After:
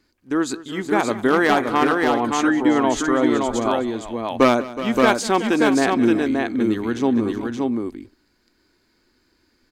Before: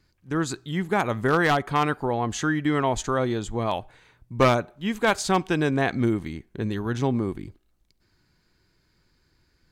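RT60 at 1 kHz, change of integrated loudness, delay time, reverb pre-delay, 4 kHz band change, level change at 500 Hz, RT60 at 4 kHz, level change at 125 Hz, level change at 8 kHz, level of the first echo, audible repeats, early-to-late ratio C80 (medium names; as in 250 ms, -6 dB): no reverb, +5.0 dB, 191 ms, no reverb, +4.5 dB, +6.0 dB, no reverb, -6.0 dB, +4.5 dB, -18.5 dB, 3, no reverb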